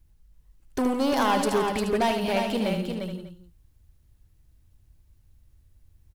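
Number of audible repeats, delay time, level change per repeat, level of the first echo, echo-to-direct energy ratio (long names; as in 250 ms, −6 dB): 7, 75 ms, repeats not evenly spaced, −7.0 dB, −2.5 dB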